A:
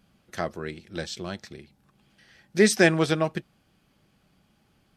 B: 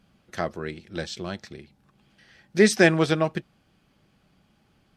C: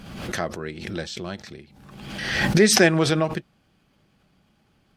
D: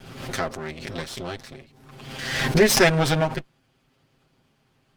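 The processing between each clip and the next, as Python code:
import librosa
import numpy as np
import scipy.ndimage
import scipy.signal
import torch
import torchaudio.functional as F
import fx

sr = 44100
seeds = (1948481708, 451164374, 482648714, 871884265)

y1 = fx.high_shelf(x, sr, hz=9100.0, db=-8.5)
y1 = F.gain(torch.from_numpy(y1), 1.5).numpy()
y2 = fx.pre_swell(y1, sr, db_per_s=45.0)
y3 = fx.lower_of_two(y2, sr, delay_ms=7.6)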